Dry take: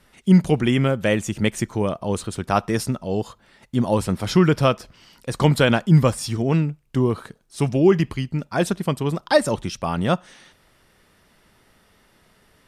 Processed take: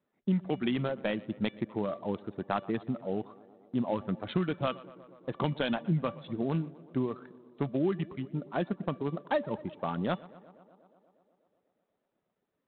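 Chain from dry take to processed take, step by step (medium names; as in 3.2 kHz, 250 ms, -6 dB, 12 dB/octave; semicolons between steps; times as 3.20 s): local Wiener filter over 15 samples; high-pass 200 Hz 12 dB/octave; peaking EQ 1.5 kHz -5 dB 2.3 oct; gate -54 dBFS, range -13 dB; reverb removal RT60 0.99 s; dynamic bell 450 Hz, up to -7 dB, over -29 dBFS, Q 1.4; 7.78–9.83 s: low-pass 2.7 kHz 6 dB/octave; feedback comb 580 Hz, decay 0.26 s, harmonics all, mix 60%; tape echo 121 ms, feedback 83%, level -21 dB, low-pass 2 kHz; compression 10:1, threshold -28 dBFS, peak gain reduction 7.5 dB; trim +4 dB; IMA ADPCM 32 kbps 8 kHz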